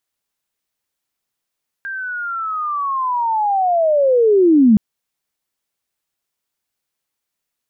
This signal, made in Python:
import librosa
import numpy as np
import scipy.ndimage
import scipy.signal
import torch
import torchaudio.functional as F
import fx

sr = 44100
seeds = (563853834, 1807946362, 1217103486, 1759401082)

y = fx.chirp(sr, length_s=2.92, from_hz=1600.0, to_hz=200.0, law='linear', from_db=-23.5, to_db=-6.5)